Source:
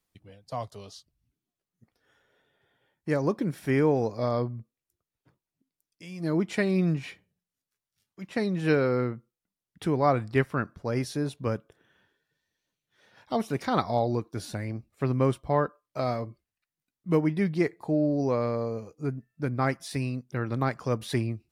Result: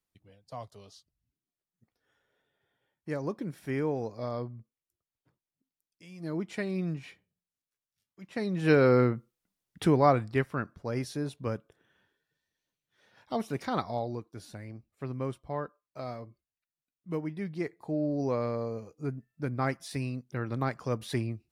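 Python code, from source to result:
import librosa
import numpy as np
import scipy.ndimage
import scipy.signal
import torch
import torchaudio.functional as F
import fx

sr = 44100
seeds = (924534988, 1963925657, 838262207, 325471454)

y = fx.gain(x, sr, db=fx.line((8.26, -7.5), (8.89, 4.0), (9.84, 4.0), (10.4, -4.0), (13.63, -4.0), (14.29, -10.0), (17.41, -10.0), (18.25, -3.5)))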